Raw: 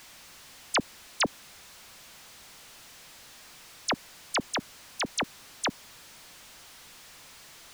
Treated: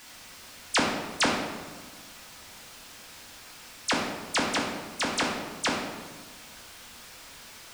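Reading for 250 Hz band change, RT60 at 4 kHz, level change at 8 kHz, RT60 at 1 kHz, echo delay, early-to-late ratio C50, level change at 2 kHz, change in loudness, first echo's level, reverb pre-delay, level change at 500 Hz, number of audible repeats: +6.0 dB, 0.90 s, +2.5 dB, 1.3 s, no echo, 2.5 dB, +4.5 dB, +3.0 dB, no echo, 4 ms, +5.0 dB, no echo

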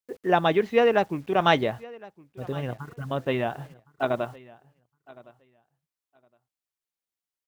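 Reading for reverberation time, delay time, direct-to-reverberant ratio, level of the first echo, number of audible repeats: no reverb, 1063 ms, no reverb, -22.0 dB, 1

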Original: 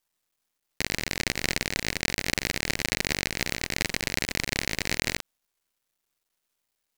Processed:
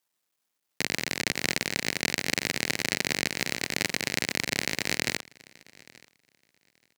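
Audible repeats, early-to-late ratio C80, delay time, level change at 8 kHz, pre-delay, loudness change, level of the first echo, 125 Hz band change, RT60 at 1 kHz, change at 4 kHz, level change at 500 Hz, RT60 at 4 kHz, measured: 1, no reverb, 879 ms, 0.0 dB, no reverb, 0.0 dB, -24.0 dB, -3.5 dB, no reverb, 0.0 dB, 0.0 dB, no reverb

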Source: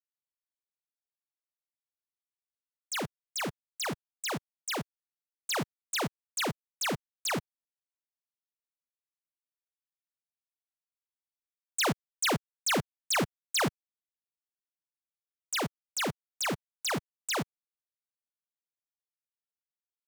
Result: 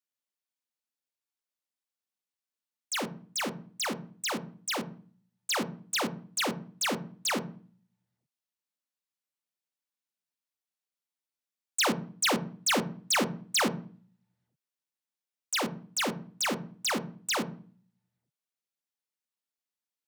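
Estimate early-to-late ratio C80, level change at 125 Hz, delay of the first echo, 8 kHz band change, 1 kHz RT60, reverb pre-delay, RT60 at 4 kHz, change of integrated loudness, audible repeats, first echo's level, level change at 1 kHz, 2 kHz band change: 21.0 dB, -1.5 dB, no echo, +2.5 dB, 0.40 s, 3 ms, 0.40 s, +2.0 dB, no echo, no echo, +1.5 dB, +2.0 dB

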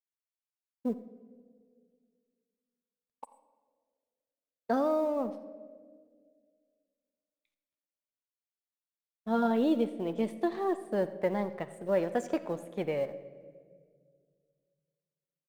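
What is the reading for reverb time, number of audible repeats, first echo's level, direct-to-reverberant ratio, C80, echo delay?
1.9 s, 1, -19.5 dB, 10.0 dB, 14.0 dB, 87 ms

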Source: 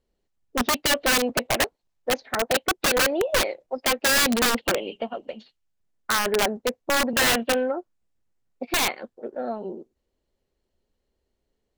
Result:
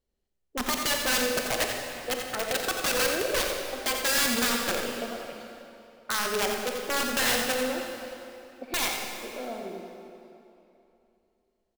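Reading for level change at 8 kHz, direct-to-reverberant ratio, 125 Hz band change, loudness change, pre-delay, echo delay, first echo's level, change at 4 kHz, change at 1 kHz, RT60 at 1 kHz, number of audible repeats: -2.5 dB, 1.0 dB, -5.5 dB, -4.0 dB, 30 ms, 87 ms, -7.0 dB, -3.5 dB, -5.0 dB, 2.9 s, 1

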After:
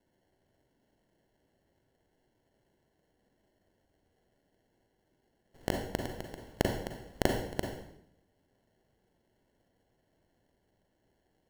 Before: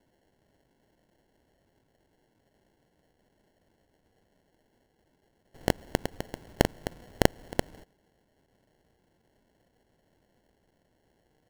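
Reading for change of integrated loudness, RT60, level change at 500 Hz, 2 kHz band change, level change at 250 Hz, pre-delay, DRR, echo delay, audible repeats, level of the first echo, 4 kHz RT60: -4.5 dB, 0.70 s, -4.0 dB, -5.0 dB, -4.5 dB, 36 ms, 2.0 dB, no echo, no echo, no echo, 0.65 s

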